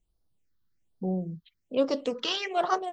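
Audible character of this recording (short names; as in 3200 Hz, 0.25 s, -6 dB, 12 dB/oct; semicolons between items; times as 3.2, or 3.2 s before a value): phasing stages 6, 1.2 Hz, lowest notch 620–2400 Hz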